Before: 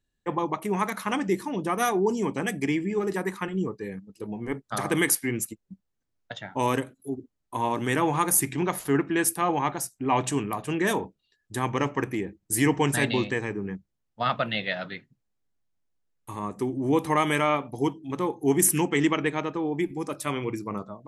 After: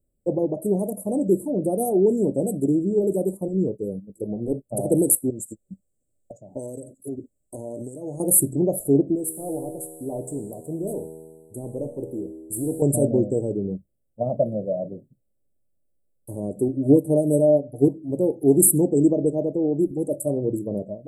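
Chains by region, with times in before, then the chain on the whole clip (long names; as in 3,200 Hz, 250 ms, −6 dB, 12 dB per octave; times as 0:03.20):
0:05.30–0:08.20: flat-topped bell 3,600 Hz +16 dB 2.6 octaves + downward compressor 4 to 1, threshold −33 dBFS
0:09.15–0:12.82: leveller curve on the samples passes 1 + tuned comb filter 80 Hz, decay 1.7 s, mix 80%
0:16.68–0:17.88: comb filter 6.9 ms, depth 76% + dynamic equaliser 1,500 Hz, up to −7 dB, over −38 dBFS, Q 1 + expander for the loud parts, over −31 dBFS
whole clip: Chebyshev band-stop filter 580–7,900 Hz, order 5; flat-topped bell 1,300 Hz +14 dB 2.4 octaves; level +6 dB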